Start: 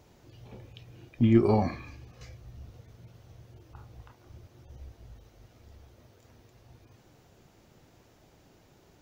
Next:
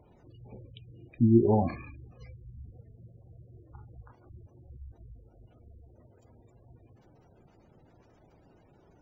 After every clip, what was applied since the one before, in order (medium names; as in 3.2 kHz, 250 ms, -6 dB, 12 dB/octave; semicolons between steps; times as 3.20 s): spectral gate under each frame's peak -20 dB strong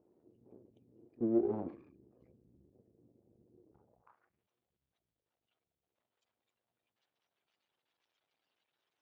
reverse echo 36 ms -23.5 dB; half-wave rectifier; band-pass sweep 350 Hz -> 3.5 kHz, 3.72–4.48 s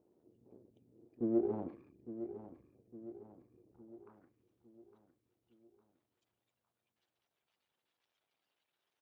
feedback delay 858 ms, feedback 49%, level -11.5 dB; trim -1.5 dB